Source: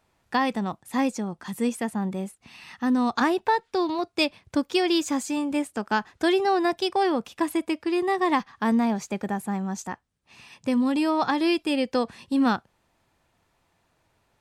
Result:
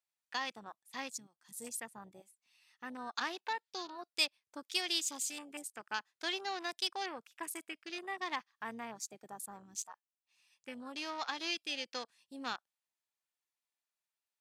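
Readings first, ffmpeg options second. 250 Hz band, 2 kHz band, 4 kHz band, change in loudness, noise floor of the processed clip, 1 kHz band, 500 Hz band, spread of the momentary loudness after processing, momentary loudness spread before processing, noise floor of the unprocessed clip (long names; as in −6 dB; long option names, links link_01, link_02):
−25.5 dB, −9.5 dB, −5.0 dB, −14.0 dB, below −85 dBFS, −15.5 dB, −21.0 dB, 14 LU, 8 LU, −70 dBFS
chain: -af "aeval=exprs='0.316*(cos(1*acos(clip(val(0)/0.316,-1,1)))-cos(1*PI/2))+0.0158*(cos(4*acos(clip(val(0)/0.316,-1,1)))-cos(4*PI/2))':channel_layout=same,aderivative,afwtdn=0.00398,highshelf=frequency=5800:gain=-5,volume=2.5dB"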